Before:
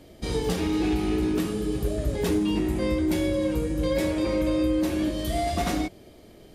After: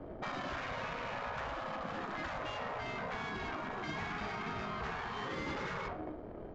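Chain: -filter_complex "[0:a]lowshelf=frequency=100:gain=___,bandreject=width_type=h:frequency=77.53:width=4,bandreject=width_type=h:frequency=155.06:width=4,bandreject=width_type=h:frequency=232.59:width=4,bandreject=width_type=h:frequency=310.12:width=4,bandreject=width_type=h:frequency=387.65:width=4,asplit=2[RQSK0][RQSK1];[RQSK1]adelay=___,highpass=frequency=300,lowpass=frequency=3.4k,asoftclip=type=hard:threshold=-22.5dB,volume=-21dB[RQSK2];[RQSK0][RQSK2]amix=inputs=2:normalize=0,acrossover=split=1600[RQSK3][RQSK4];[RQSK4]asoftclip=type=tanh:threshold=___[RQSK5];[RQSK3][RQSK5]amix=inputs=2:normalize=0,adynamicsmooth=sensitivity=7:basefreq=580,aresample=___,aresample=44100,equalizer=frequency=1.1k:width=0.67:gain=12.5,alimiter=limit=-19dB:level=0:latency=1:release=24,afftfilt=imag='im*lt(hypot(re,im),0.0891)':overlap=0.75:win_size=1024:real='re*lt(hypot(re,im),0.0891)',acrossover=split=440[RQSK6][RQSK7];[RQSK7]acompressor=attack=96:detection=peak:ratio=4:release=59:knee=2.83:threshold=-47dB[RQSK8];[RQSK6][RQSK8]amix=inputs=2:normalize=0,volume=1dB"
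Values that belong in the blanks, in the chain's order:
2.5, 220, -38.5dB, 16000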